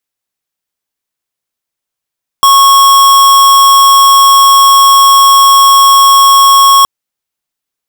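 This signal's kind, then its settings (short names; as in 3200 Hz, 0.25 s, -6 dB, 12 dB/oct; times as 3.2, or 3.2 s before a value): tone square 1100 Hz -4 dBFS 4.42 s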